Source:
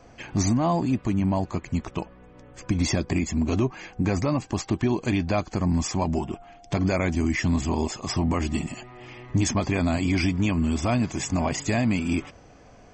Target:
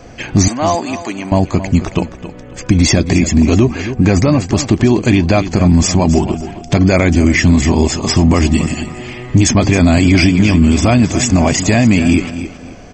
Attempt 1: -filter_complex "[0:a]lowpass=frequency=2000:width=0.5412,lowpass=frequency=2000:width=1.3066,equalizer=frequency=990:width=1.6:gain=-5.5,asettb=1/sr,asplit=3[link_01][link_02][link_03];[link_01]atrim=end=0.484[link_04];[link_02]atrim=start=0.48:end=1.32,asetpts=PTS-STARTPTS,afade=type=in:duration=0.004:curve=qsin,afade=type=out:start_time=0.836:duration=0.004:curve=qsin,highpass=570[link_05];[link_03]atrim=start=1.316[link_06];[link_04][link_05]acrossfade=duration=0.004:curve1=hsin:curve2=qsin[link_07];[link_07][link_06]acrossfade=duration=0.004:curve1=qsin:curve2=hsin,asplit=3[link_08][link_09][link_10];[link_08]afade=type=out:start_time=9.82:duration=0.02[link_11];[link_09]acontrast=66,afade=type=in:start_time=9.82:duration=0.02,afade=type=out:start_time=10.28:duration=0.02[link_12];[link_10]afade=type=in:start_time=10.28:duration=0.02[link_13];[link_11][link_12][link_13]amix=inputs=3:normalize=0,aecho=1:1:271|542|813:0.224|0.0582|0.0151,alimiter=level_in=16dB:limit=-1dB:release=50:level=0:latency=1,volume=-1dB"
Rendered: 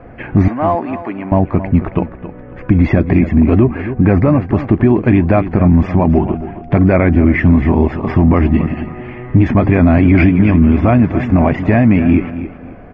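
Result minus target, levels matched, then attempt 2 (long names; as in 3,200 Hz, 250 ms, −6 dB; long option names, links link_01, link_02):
2,000 Hz band −3.0 dB
-filter_complex "[0:a]equalizer=frequency=990:width=1.6:gain=-5.5,asettb=1/sr,asplit=3[link_01][link_02][link_03];[link_01]atrim=end=0.484[link_04];[link_02]atrim=start=0.48:end=1.32,asetpts=PTS-STARTPTS,afade=type=in:duration=0.004:curve=qsin,afade=type=out:start_time=0.836:duration=0.004:curve=qsin,highpass=570[link_05];[link_03]atrim=start=1.316[link_06];[link_04][link_05]acrossfade=duration=0.004:curve1=hsin:curve2=qsin[link_07];[link_07][link_06]acrossfade=duration=0.004:curve1=qsin:curve2=hsin,asplit=3[link_08][link_09][link_10];[link_08]afade=type=out:start_time=9.82:duration=0.02[link_11];[link_09]acontrast=66,afade=type=in:start_time=9.82:duration=0.02,afade=type=out:start_time=10.28:duration=0.02[link_12];[link_10]afade=type=in:start_time=10.28:duration=0.02[link_13];[link_11][link_12][link_13]amix=inputs=3:normalize=0,aecho=1:1:271|542|813:0.224|0.0582|0.0151,alimiter=level_in=16dB:limit=-1dB:release=50:level=0:latency=1,volume=-1dB"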